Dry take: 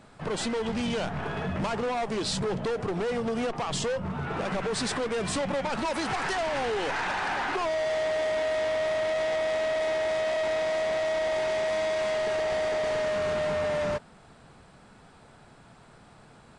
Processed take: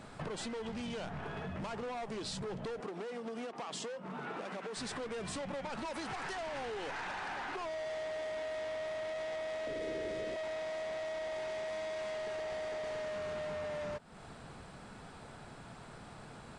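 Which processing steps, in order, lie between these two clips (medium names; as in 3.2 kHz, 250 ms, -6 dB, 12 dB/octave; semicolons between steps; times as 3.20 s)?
2.80–4.77 s: high-pass 200 Hz 24 dB/octave; compression 16:1, threshold -41 dBFS, peak gain reduction 16.5 dB; 9.67–10.36 s: resonant low shelf 570 Hz +8.5 dB, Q 3; trim +2.5 dB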